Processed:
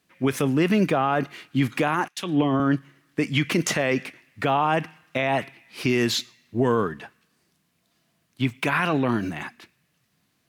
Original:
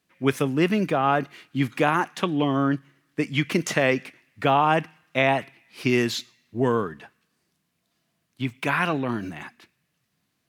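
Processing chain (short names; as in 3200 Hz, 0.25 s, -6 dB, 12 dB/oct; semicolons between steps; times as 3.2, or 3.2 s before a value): limiter -16.5 dBFS, peak gain reduction 10.5 dB; 2.08–2.6 three-band expander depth 100%; gain +4.5 dB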